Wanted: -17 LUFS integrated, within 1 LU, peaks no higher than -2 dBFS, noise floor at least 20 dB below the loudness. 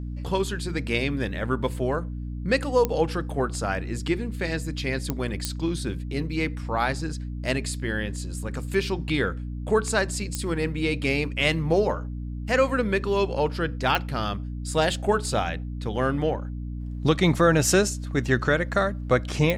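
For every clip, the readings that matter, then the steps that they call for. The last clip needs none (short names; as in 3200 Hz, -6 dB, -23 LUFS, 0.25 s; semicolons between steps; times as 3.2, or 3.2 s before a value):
clicks 6; hum 60 Hz; harmonics up to 300 Hz; hum level -30 dBFS; loudness -26.0 LUFS; peak -8.0 dBFS; loudness target -17.0 LUFS
-> de-click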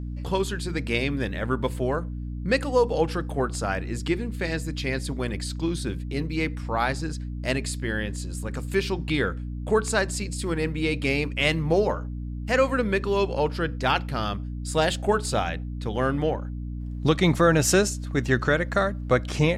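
clicks 0; hum 60 Hz; harmonics up to 300 Hz; hum level -30 dBFS
-> notches 60/120/180/240/300 Hz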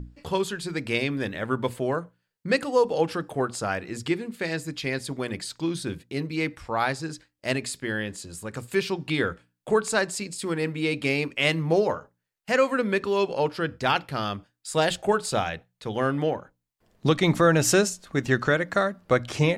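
hum none; loudness -26.0 LUFS; peak -8.0 dBFS; loudness target -17.0 LUFS
-> gain +9 dB; limiter -2 dBFS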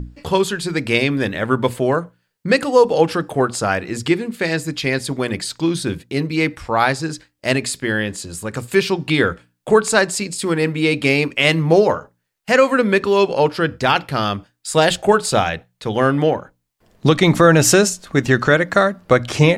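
loudness -17.5 LUFS; peak -2.0 dBFS; noise floor -71 dBFS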